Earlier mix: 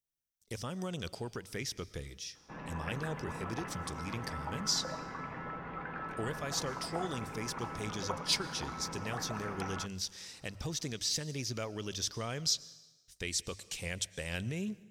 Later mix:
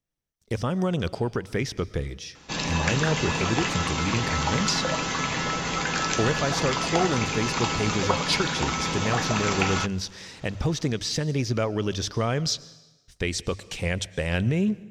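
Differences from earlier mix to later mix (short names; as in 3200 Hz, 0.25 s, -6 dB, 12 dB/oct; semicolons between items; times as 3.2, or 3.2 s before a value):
background: remove LPF 1600 Hz 24 dB/oct; master: remove pre-emphasis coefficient 0.8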